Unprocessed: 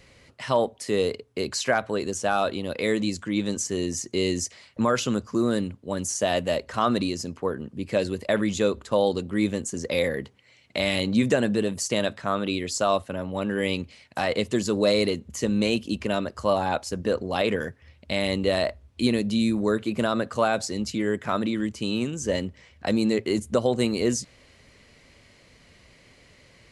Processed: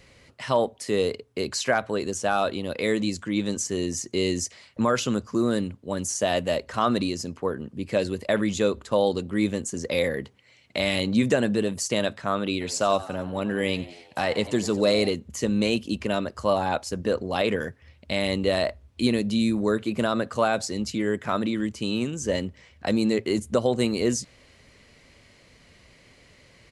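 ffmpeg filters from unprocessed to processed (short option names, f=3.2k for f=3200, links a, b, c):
-filter_complex "[0:a]asplit=3[a][b][c];[a]afade=t=out:st=12.6:d=0.02[d];[b]asplit=6[e][f][g][h][i][j];[f]adelay=90,afreqshift=78,volume=-17dB[k];[g]adelay=180,afreqshift=156,volume=-22.2dB[l];[h]adelay=270,afreqshift=234,volume=-27.4dB[m];[i]adelay=360,afreqshift=312,volume=-32.6dB[n];[j]adelay=450,afreqshift=390,volume=-37.8dB[o];[e][k][l][m][n][o]amix=inputs=6:normalize=0,afade=t=in:st=12.6:d=0.02,afade=t=out:st=15.09:d=0.02[p];[c]afade=t=in:st=15.09:d=0.02[q];[d][p][q]amix=inputs=3:normalize=0"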